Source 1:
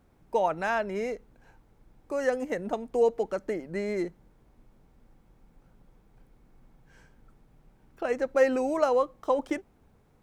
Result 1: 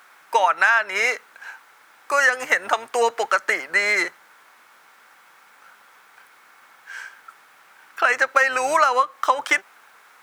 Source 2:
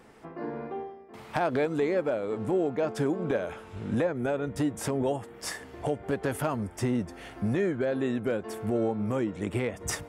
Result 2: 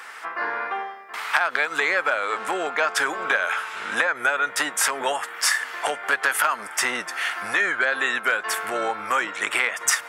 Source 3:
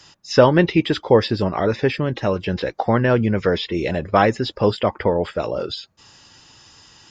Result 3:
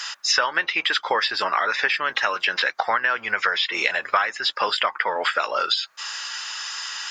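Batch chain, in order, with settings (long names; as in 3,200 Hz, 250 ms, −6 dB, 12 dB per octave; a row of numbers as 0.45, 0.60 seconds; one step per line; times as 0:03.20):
sub-octave generator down 1 octave, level −4 dB
high-pass with resonance 1,400 Hz, resonance Q 1.9
downward compressor 8 to 1, threshold −35 dBFS
normalise the peak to −3 dBFS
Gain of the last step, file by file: +21.0, +18.0, +16.0 decibels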